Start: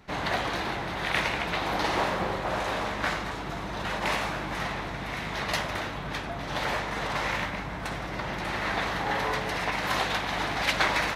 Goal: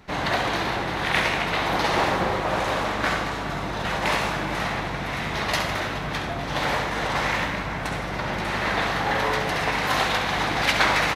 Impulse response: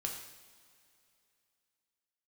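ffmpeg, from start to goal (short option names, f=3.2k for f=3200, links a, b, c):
-filter_complex "[0:a]asplit=2[a][b];[b]adelay=419.8,volume=-12dB,highshelf=f=4k:g=-9.45[c];[a][c]amix=inputs=2:normalize=0,asplit=2[d][e];[1:a]atrim=start_sample=2205,adelay=67[f];[e][f]afir=irnorm=-1:irlink=0,volume=-7dB[g];[d][g]amix=inputs=2:normalize=0,volume=4dB"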